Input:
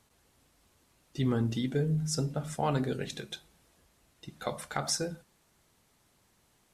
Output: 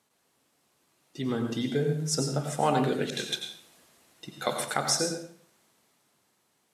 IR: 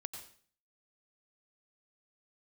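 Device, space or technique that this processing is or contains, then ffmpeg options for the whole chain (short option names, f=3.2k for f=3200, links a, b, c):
far laptop microphone: -filter_complex "[1:a]atrim=start_sample=2205[a];[0:a][a]afir=irnorm=-1:irlink=0,highpass=190,dynaudnorm=f=230:g=13:m=8.5dB,asettb=1/sr,asplit=3[b][c][d];[b]atrim=end=3.104[e];[c]atrim=start=3.1:end=4.74,asetpts=PTS-STARTPTS,afade=t=in:d=0.004:c=qsin,afade=t=out:st=1.636:d=0.004:c=qsin,adynamicequalizer=threshold=0.00501:dfrequency=1600:dqfactor=0.7:tfrequency=1600:tqfactor=0.7:attack=5:release=100:ratio=0.375:range=2.5:mode=boostabove:tftype=highshelf[f];[d]atrim=start=4.736[g];[e][f]acrossfade=d=0.004:c1=hsin:c2=qsin[h];[h][g]acrossfade=d=0.004:c1=qsin:c2=hsin"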